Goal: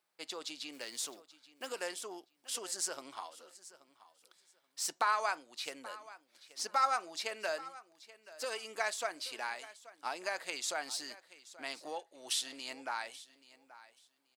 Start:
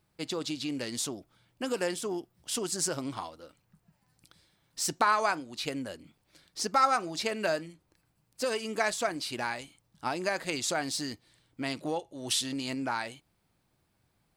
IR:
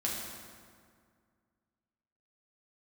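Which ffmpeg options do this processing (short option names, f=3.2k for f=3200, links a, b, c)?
-filter_complex "[0:a]asplit=3[a][b][c];[a]afade=t=out:st=0.72:d=0.02[d];[b]acrusher=bits=5:mode=log:mix=0:aa=0.000001,afade=t=in:st=0.72:d=0.02,afade=t=out:st=1.66:d=0.02[e];[c]afade=t=in:st=1.66:d=0.02[f];[d][e][f]amix=inputs=3:normalize=0,highpass=590,aecho=1:1:830|1660:0.126|0.0239,volume=-5dB"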